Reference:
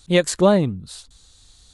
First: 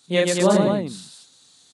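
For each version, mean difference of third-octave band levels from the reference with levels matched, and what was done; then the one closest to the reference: 9.5 dB: high-pass 160 Hz 24 dB/octave; on a send: loudspeakers at several distances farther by 13 m -1 dB, 43 m -3 dB, 78 m -4 dB; on the sum: trim -4.5 dB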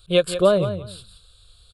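6.5 dB: static phaser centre 1.3 kHz, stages 8; feedback delay 175 ms, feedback 18%, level -11 dB; trim +1 dB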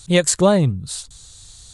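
2.5 dB: graphic EQ 125/250/8000 Hz +8/-5/+8 dB; in parallel at -2 dB: compression, threshold -30 dBFS, peak gain reduction 18 dB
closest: third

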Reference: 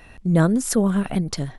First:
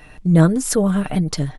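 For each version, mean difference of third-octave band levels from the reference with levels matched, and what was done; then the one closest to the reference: 1.0 dB: comb 6.6 ms, depth 50%; trim +2 dB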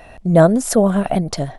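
2.0 dB: peaking EQ 660 Hz +13 dB 0.67 oct; trim +2.5 dB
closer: first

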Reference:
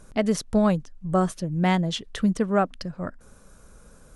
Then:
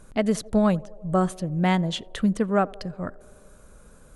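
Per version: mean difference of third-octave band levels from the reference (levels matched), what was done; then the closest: 1.5 dB: peaking EQ 5.5 kHz -6 dB 0.34 oct; band-passed feedback delay 87 ms, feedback 83%, band-pass 500 Hz, level -22 dB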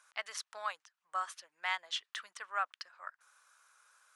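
10.5 dB: high-pass 1.1 kHz 24 dB/octave; treble shelf 6.8 kHz -11 dB; trim -3.5 dB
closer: first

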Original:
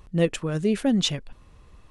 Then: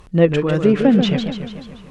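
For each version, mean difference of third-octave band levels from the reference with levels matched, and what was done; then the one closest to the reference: 7.0 dB: low-pass that closes with the level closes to 2 kHz, closed at -18.5 dBFS; bass shelf 96 Hz -7.5 dB; modulated delay 145 ms, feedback 59%, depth 212 cents, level -7 dB; trim +9 dB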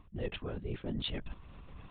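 10.5 dB: band-stop 1.7 kHz, Q 25; LPC vocoder at 8 kHz whisper; reverse; compression 5:1, threshold -36 dBFS, peak gain reduction 17.5 dB; reverse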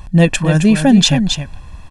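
4.5 dB: comb 1.2 ms, depth 66%; delay 268 ms -8.5 dB; loudness maximiser +13.5 dB; trim -1 dB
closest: third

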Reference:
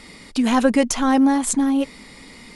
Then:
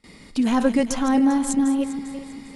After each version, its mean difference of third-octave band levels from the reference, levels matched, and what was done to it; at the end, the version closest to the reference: 3.5 dB: backward echo that repeats 199 ms, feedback 60%, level -11 dB; bass shelf 420 Hz +6 dB; gate with hold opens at -32 dBFS; trim -6 dB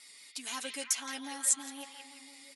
9.0 dB: differentiator; comb 7 ms; vibrato 5.7 Hz 28 cents; on a send: repeats whose band climbs or falls 169 ms, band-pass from 2.9 kHz, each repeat -0.7 oct, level -1 dB; on the sum: trim -5.5 dB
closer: first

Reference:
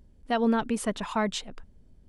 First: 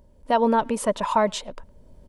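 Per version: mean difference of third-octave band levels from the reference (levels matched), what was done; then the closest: 2.5 dB: recorder AGC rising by 11 dB/s; treble shelf 7.1 kHz +5.5 dB; small resonant body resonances 580/940 Hz, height 14 dB, ringing for 25 ms; speakerphone echo 110 ms, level -28 dB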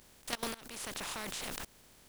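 18.0 dB: spectral contrast reduction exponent 0.29; level held to a coarse grid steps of 24 dB; peak limiter -16.5 dBFS, peak gain reduction 8 dB; compression 6:1, threshold -48 dBFS, peak gain reduction 21 dB; trim +11.5 dB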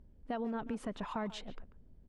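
4.5 dB: low-pass 1.5 kHz 6 dB/octave; peak limiter -21.5 dBFS, peak gain reduction 6 dB; compression, threshold -31 dBFS, peak gain reduction 6.5 dB; speakerphone echo 140 ms, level -14 dB; trim -3 dB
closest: first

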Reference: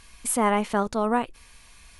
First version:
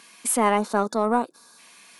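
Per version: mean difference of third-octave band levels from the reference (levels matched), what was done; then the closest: 2.5 dB: high-pass 200 Hz 24 dB/octave; time-frequency box 0.57–1.59 s, 1.7–3.5 kHz -16 dB; in parallel at -7 dB: saturation -20 dBFS, distortion -9 dB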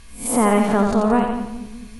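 7.0 dB: reverse spectral sustain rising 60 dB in 0.35 s; bass shelf 500 Hz +9 dB; on a send: two-band feedback delay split 300 Hz, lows 210 ms, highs 87 ms, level -5 dB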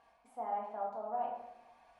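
10.5 dB: reverse; compression 4:1, threshold -37 dBFS, peak gain reduction 16.5 dB; reverse; band-pass filter 750 Hz, Q 6.6; simulated room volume 290 m³, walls mixed, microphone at 1.7 m; trim +4 dB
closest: first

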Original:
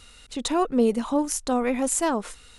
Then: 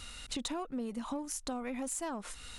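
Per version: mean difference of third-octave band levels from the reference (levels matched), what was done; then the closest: 6.0 dB: in parallel at -8 dB: saturation -25 dBFS, distortion -7 dB; on the sum: peaking EQ 440 Hz -6.5 dB 0.43 oct; compression 10:1, threshold -35 dBFS, peak gain reduction 18 dB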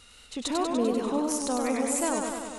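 7.5 dB: bass shelf 75 Hz -7.5 dB; compression 1.5:1, threshold -26 dBFS, peak gain reduction 4 dB; modulated delay 98 ms, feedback 71%, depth 107 cents, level -4 dB; trim -3 dB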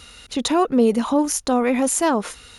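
1.5 dB: high-pass 51 Hz 12 dB/octave; band-stop 8 kHz, Q 5.5; in parallel at 0 dB: peak limiter -21 dBFS, peak gain reduction 11 dB; on the sum: trim +1.5 dB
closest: third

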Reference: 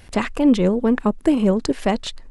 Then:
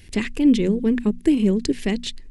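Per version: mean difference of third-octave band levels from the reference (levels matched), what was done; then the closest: 3.5 dB: high-order bell 880 Hz -14.5 dB; hum notches 60/120/180/240 Hz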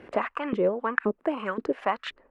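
7.0 dB: high-order bell 1.8 kHz +8 dB; LFO band-pass saw up 1.9 Hz 350–1900 Hz; three bands compressed up and down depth 40%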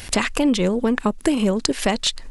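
5.0 dB: treble shelf 2 kHz +12 dB; compression 2.5:1, threshold -27 dBFS, peak gain reduction 11.5 dB; trim +6.5 dB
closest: first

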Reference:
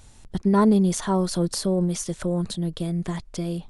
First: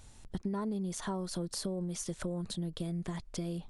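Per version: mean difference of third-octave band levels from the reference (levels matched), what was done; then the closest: 3.5 dB: compression 6:1, threshold -28 dBFS, peak gain reduction 13.5 dB; trim -5 dB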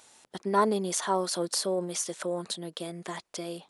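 6.0 dB: high-pass 460 Hz 12 dB/octave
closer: first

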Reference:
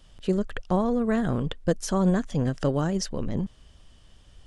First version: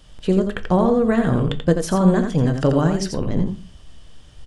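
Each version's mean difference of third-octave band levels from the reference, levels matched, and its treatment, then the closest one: 3.5 dB: dynamic bell 6.1 kHz, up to -6 dB, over -51 dBFS, Q 1.6; on a send: delay 85 ms -6.5 dB; on the sum: simulated room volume 170 m³, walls furnished, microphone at 0.47 m; trim +6 dB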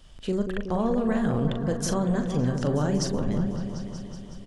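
6.0 dB: peak limiter -19.5 dBFS, peak gain reduction 8.5 dB; doubling 40 ms -8 dB; delay with an opening low-pass 186 ms, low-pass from 750 Hz, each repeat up 1 oct, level -6 dB; trim +1.5 dB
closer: first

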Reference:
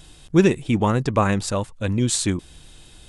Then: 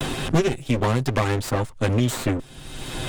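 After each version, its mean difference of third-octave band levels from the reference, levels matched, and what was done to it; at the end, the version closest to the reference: 10.0 dB: comb filter that takes the minimum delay 7.7 ms; three bands compressed up and down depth 100%; trim -1 dB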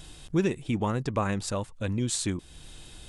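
3.0 dB: compression 1.5:1, threshold -39 dBFS, peak gain reduction 10.5 dB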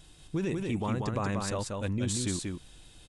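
5.5 dB: peak limiter -14.5 dBFS, peak gain reduction 11 dB; on a send: delay 186 ms -3.5 dB; on the sum: trim -8.5 dB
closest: second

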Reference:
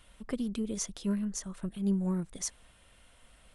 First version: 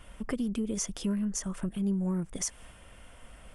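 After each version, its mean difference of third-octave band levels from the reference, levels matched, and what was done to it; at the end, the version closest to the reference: 3.0 dB: in parallel at -2.5 dB: peak limiter -30 dBFS, peak gain reduction 10 dB; on the sum: peaking EQ 4 kHz -12 dB 0.22 oct; compression 2:1, threshold -38 dBFS, peak gain reduction 8.5 dB; tape noise reduction on one side only decoder only; trim +5 dB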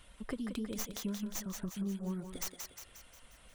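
8.5 dB: tracing distortion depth 0.14 ms; reverb removal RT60 0.51 s; compression, threshold -36 dBFS, peak gain reduction 10.5 dB; thinning echo 178 ms, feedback 54%, high-pass 360 Hz, level -5 dB; trim +1 dB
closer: first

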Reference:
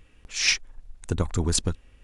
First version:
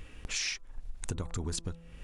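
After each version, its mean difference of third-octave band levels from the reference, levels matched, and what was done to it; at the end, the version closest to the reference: 4.5 dB: de-hum 167.3 Hz, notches 8; in parallel at +2.5 dB: peak limiter -16 dBFS, peak gain reduction 7.5 dB; on the sum: compression 10:1, threshold -32 dBFS, peak gain reduction 19.5 dB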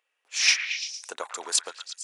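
9.5 dB: gate -42 dBFS, range -15 dB; high-pass 580 Hz 24 dB/octave; on a send: repeats whose band climbs or falls 114 ms, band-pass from 1.6 kHz, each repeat 0.7 oct, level -5 dB; on the sum: trim +1.5 dB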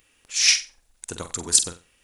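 7.5 dB: RIAA curve recording; on a send: flutter echo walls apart 7.9 m, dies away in 0.28 s; on the sum: trim -2.5 dB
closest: first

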